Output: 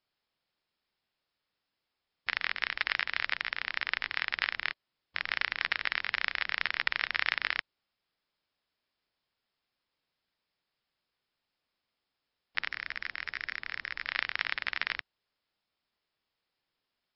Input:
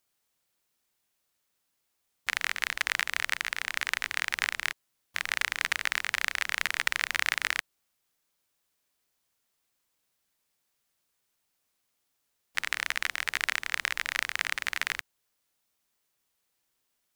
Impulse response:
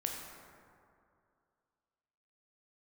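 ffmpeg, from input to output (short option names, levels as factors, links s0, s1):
-filter_complex "[0:a]asettb=1/sr,asplit=3[s0][s1][s2];[s0]atrim=end=12.704[s3];[s1]atrim=start=12.7:end=14.07,asetpts=PTS-STARTPTS,afade=t=in:d=0.004:c=qsin,afade=t=out:st=1.366:d=0.004:c=qsin,volume=10.6,asoftclip=hard,volume=0.0944[s4];[s2]atrim=start=14.066[s5];[s3][s4]acrossfade=d=0.004:c1=hsin:c2=qsin[s6];[s6][s5]acrossfade=d=0.004:c1=qsin:c2=hsin,volume=0.841" -ar 12000 -c:a libmp3lame -b:a 48k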